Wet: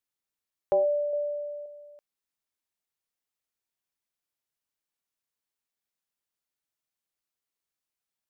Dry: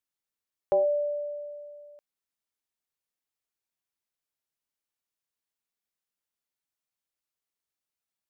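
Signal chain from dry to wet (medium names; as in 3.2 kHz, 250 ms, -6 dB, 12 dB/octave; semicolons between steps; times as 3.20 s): 1.13–1.66 s: bass shelf 460 Hz +9.5 dB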